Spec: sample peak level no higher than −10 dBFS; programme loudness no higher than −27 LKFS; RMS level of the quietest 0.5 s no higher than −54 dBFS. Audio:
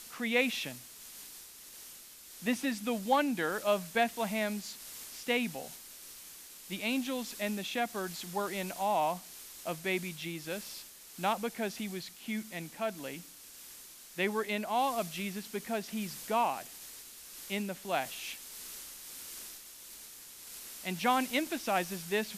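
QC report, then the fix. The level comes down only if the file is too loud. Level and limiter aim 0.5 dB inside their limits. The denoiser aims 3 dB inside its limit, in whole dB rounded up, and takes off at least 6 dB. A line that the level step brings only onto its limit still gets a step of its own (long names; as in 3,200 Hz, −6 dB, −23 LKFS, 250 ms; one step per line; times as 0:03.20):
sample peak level −15.0 dBFS: in spec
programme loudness −34.5 LKFS: in spec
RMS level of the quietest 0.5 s −51 dBFS: out of spec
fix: broadband denoise 6 dB, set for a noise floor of −51 dBFS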